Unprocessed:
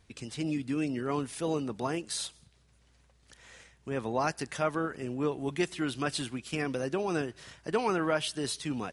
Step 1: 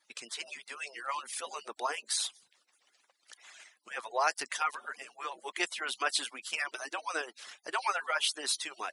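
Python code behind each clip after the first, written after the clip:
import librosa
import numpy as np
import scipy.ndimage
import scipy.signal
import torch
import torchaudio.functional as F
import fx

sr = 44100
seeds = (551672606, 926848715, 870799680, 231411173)

y = fx.hpss_only(x, sr, part='percussive')
y = scipy.signal.sosfilt(scipy.signal.butter(2, 790.0, 'highpass', fs=sr, output='sos'), y)
y = F.gain(torch.from_numpy(y), 4.5).numpy()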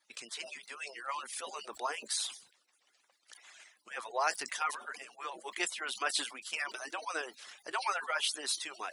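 y = fx.sustainer(x, sr, db_per_s=130.0)
y = F.gain(torch.from_numpy(y), -2.5).numpy()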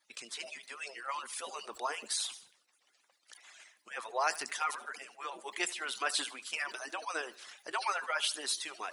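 y = fx.echo_feedback(x, sr, ms=76, feedback_pct=42, wet_db=-18.5)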